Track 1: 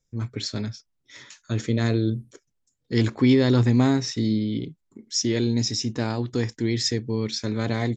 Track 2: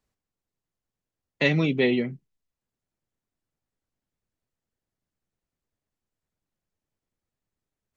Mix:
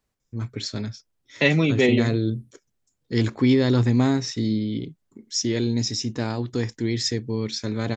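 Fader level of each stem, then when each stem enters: -0.5, +3.0 dB; 0.20, 0.00 s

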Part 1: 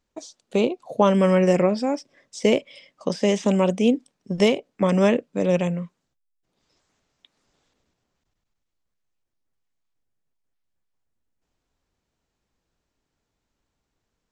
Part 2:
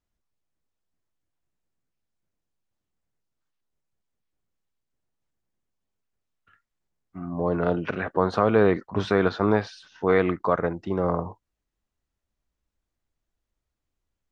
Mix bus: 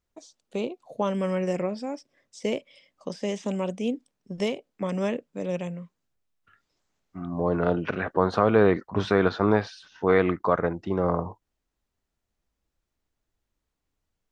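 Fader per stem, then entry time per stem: -9.0, 0.0 dB; 0.00, 0.00 s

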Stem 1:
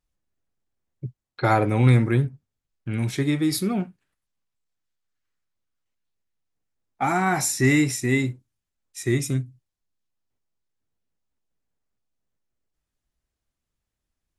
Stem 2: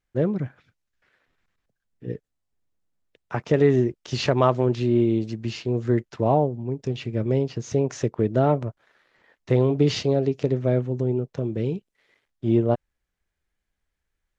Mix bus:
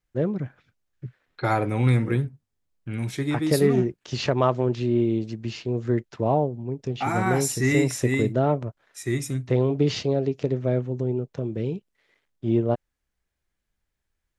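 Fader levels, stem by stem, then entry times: -3.5, -2.0 dB; 0.00, 0.00 s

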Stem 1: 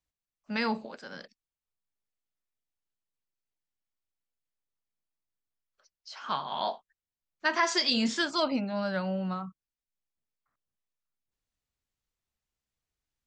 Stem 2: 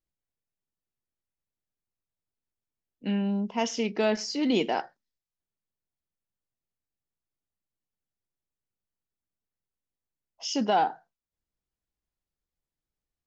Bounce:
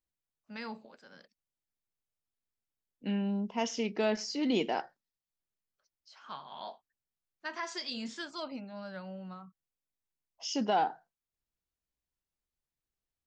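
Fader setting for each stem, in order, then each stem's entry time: -12.0, -4.5 dB; 0.00, 0.00 s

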